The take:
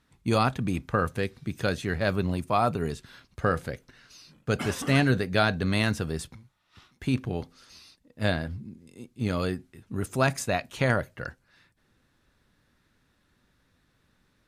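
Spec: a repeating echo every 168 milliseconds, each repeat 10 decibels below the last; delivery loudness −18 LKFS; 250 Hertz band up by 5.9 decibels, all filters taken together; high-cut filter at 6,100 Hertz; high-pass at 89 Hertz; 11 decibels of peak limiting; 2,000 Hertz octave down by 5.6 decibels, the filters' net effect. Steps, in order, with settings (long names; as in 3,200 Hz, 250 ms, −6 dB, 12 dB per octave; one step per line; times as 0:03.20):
high-pass filter 89 Hz
low-pass filter 6,100 Hz
parametric band 250 Hz +7.5 dB
parametric band 2,000 Hz −8 dB
brickwall limiter −18.5 dBFS
repeating echo 168 ms, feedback 32%, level −10 dB
level +13 dB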